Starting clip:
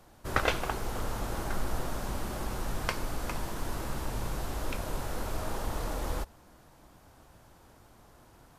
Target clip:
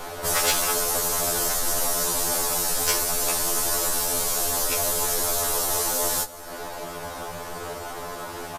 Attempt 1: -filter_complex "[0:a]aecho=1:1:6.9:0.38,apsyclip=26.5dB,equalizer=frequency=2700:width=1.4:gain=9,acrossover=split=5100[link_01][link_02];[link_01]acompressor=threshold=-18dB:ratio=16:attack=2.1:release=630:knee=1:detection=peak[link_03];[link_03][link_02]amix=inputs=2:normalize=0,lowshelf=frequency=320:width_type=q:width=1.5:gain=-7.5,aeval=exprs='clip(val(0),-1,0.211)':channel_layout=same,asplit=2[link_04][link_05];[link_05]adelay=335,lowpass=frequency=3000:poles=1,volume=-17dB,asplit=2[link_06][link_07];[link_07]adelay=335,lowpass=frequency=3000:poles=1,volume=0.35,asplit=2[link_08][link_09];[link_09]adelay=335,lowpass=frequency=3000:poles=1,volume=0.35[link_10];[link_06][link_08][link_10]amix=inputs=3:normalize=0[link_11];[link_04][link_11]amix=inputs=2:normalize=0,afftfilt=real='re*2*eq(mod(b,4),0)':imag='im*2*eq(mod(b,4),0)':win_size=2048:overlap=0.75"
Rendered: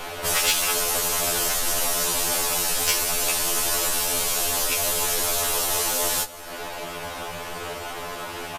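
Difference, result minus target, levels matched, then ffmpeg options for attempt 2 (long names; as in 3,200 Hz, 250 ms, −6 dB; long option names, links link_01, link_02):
2,000 Hz band +2.5 dB
-filter_complex "[0:a]aecho=1:1:6.9:0.38,apsyclip=26.5dB,acrossover=split=5100[link_01][link_02];[link_01]acompressor=threshold=-18dB:ratio=16:attack=2.1:release=630:knee=1:detection=peak[link_03];[link_03][link_02]amix=inputs=2:normalize=0,lowshelf=frequency=320:width_type=q:width=1.5:gain=-7.5,aeval=exprs='clip(val(0),-1,0.211)':channel_layout=same,asplit=2[link_04][link_05];[link_05]adelay=335,lowpass=frequency=3000:poles=1,volume=-17dB,asplit=2[link_06][link_07];[link_07]adelay=335,lowpass=frequency=3000:poles=1,volume=0.35,asplit=2[link_08][link_09];[link_09]adelay=335,lowpass=frequency=3000:poles=1,volume=0.35[link_10];[link_06][link_08][link_10]amix=inputs=3:normalize=0[link_11];[link_04][link_11]amix=inputs=2:normalize=0,afftfilt=real='re*2*eq(mod(b,4),0)':imag='im*2*eq(mod(b,4),0)':win_size=2048:overlap=0.75"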